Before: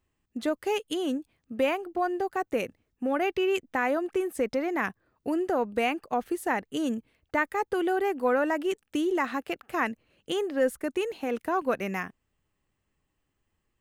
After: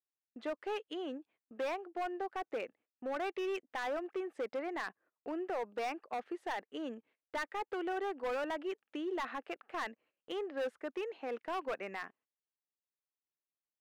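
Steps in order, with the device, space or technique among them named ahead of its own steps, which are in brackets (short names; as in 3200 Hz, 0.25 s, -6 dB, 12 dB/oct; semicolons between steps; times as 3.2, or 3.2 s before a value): walkie-talkie (BPF 400–2600 Hz; hard clip -26 dBFS, distortion -10 dB; gate -59 dBFS, range -18 dB); gain -6.5 dB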